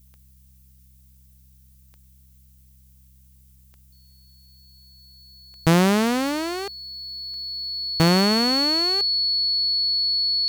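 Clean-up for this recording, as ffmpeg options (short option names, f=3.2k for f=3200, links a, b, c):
-af "adeclick=t=4,bandreject=f=65.2:t=h:w=4,bandreject=f=130.4:t=h:w=4,bandreject=f=195.6:t=h:w=4,bandreject=f=4.4k:w=30,agate=range=-21dB:threshold=-45dB"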